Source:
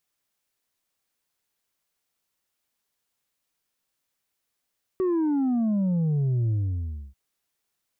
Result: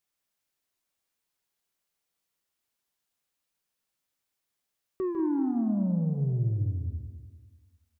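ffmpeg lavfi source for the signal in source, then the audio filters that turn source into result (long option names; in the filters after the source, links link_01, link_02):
-f lavfi -i "aevalsrc='0.0841*clip((2.14-t)/0.64,0,1)*tanh(1.5*sin(2*PI*380*2.14/log(65/380)*(exp(log(65/380)*t/2.14)-1)))/tanh(1.5)':duration=2.14:sample_rate=44100"
-filter_complex "[0:a]asplit=2[link_01][link_02];[link_02]aecho=0:1:150:0.398[link_03];[link_01][link_03]amix=inputs=2:normalize=0,flanger=delay=9.6:depth=1.4:regen=-77:speed=1.6:shape=triangular,asplit=2[link_04][link_05];[link_05]aecho=0:1:195|390|585|780|975:0.282|0.135|0.0649|0.0312|0.015[link_06];[link_04][link_06]amix=inputs=2:normalize=0"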